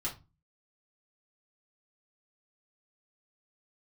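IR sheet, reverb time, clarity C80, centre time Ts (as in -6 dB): 0.25 s, 19.5 dB, 18 ms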